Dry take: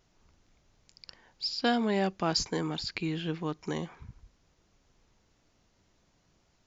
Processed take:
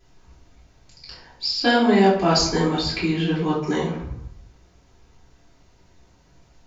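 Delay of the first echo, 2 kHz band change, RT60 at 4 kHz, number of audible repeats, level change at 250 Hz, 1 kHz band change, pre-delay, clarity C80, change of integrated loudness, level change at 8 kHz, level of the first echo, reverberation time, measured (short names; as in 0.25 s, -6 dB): none, +11.5 dB, 0.45 s, none, +11.5 dB, +11.5 dB, 3 ms, 7.5 dB, +11.0 dB, n/a, none, 0.75 s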